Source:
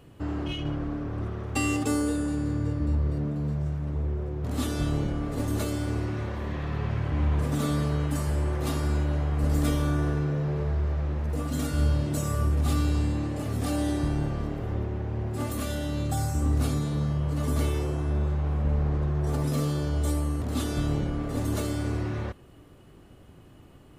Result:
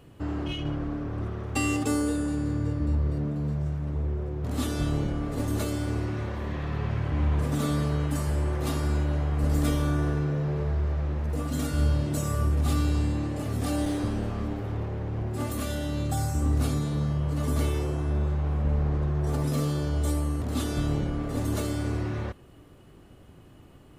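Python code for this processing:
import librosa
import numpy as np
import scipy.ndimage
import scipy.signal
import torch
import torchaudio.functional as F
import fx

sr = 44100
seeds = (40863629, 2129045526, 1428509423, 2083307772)

y = fx.lower_of_two(x, sr, delay_ms=10.0, at=(13.85, 15.22))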